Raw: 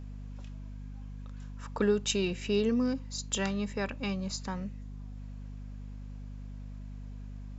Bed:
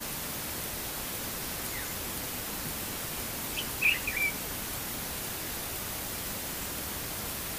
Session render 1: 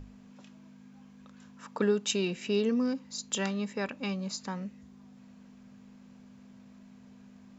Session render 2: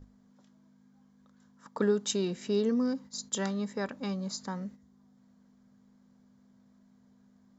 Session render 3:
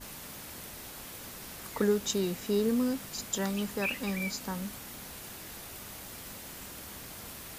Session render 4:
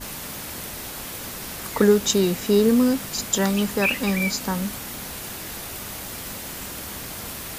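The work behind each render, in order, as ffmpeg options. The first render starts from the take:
-af "bandreject=f=50:t=h:w=6,bandreject=f=100:t=h:w=6,bandreject=f=150:t=h:w=6"
-af "agate=range=-9dB:threshold=-45dB:ratio=16:detection=peak,equalizer=f=2.6k:w=3.6:g=-14.5"
-filter_complex "[1:a]volume=-8.5dB[a];[0:a][a]amix=inputs=2:normalize=0"
-af "volume=10.5dB"

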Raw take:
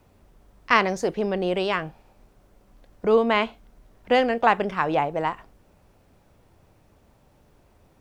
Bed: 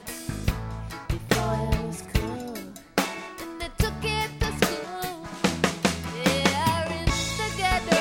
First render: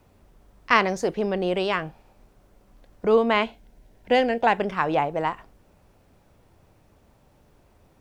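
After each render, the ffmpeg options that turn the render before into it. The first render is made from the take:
-filter_complex "[0:a]asettb=1/sr,asplit=3[a][b][c];[a]atrim=end=3.434[d];[b]atrim=start=3.43:end=4.6,asetpts=PTS-STARTPTS,afade=t=in:d=0.004:c=qsin,afade=t=out:st=1.166:d=0.004:c=qsin,equalizer=f=1.2k:w=6.3:g=-15[e];[c]atrim=start=4.596[f];[d][e]acrossfade=d=0.004:c1=hsin:c2=qsin[g];[g][f]acrossfade=d=0.004:c1=qsin:c2=hsin"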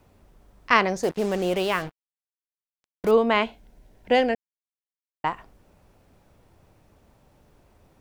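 -filter_complex "[0:a]asettb=1/sr,asplit=3[a][b][c];[a]atrim=end=1.034[d];[b]atrim=start=1.03:end=3.11,asetpts=PTS-STARTPTS,afade=t=in:d=0.004:c=qsin,afade=t=out:st=2.076:d=0.004:c=qsin,acrusher=bits=5:mix=0:aa=0.5[e];[c]atrim=start=3.106[f];[d][e]acrossfade=d=0.004:c1=hsin:c2=qsin[g];[g][f]acrossfade=d=0.004:c1=qsin:c2=hsin,asplit=3[h][i][j];[h]atrim=end=4.35,asetpts=PTS-STARTPTS,afade=t=out:st=4.346:d=0.004:c=hsin[k];[i]atrim=start=4.35:end=5.24,asetpts=PTS-STARTPTS,volume=0[l];[j]atrim=start=5.24,asetpts=PTS-STARTPTS,afade=t=in:d=0.004:c=hsin[m];[k][l][m]concat=n=3:v=0:a=1"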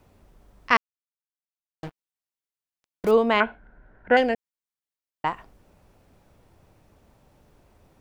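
-filter_complex "[0:a]asettb=1/sr,asplit=3[a][b][c];[a]atrim=end=3.404[d];[b]atrim=start=3.4:end=4.17,asetpts=PTS-STARTPTS,afade=t=in:d=0.004:c=qsin,afade=t=out:st=0.766:d=0.004:c=qsin,lowpass=f=1.5k:t=q:w=8.2[e];[c]atrim=start=4.166[f];[d][e]acrossfade=d=0.004:c1=hsin:c2=qsin[g];[g][f]acrossfade=d=0.004:c1=qsin:c2=hsin,asplit=3[h][i][j];[h]atrim=end=0.77,asetpts=PTS-STARTPTS,afade=t=out:st=0.766:d=0.004:c=hsin[k];[i]atrim=start=0.77:end=1.83,asetpts=PTS-STARTPTS,volume=0[l];[j]atrim=start=1.83,asetpts=PTS-STARTPTS,afade=t=in:d=0.004:c=hsin[m];[k][l][m]concat=n=3:v=0:a=1"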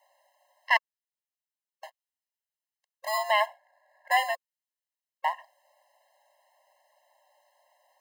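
-filter_complex "[0:a]acrossover=split=270|500|1500[a][b][c][d];[b]acrusher=samples=29:mix=1:aa=0.000001[e];[a][e][c][d]amix=inputs=4:normalize=0,afftfilt=real='re*eq(mod(floor(b*sr/1024/540),2),1)':imag='im*eq(mod(floor(b*sr/1024/540),2),1)':win_size=1024:overlap=0.75"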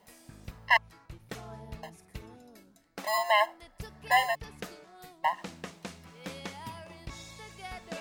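-filter_complex "[1:a]volume=-19dB[a];[0:a][a]amix=inputs=2:normalize=0"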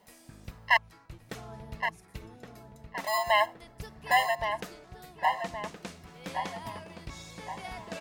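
-filter_complex "[0:a]asplit=2[a][b];[b]adelay=1119,lowpass=f=2.2k:p=1,volume=-6.5dB,asplit=2[c][d];[d]adelay=1119,lowpass=f=2.2k:p=1,volume=0.49,asplit=2[e][f];[f]adelay=1119,lowpass=f=2.2k:p=1,volume=0.49,asplit=2[g][h];[h]adelay=1119,lowpass=f=2.2k:p=1,volume=0.49,asplit=2[i][j];[j]adelay=1119,lowpass=f=2.2k:p=1,volume=0.49,asplit=2[k][l];[l]adelay=1119,lowpass=f=2.2k:p=1,volume=0.49[m];[a][c][e][g][i][k][m]amix=inputs=7:normalize=0"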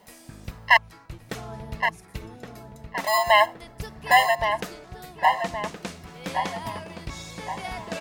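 -af "volume=7dB,alimiter=limit=-1dB:level=0:latency=1"

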